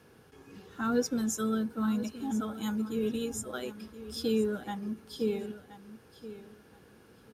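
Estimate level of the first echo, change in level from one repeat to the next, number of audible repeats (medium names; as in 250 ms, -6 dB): -14.0 dB, -14.0 dB, 2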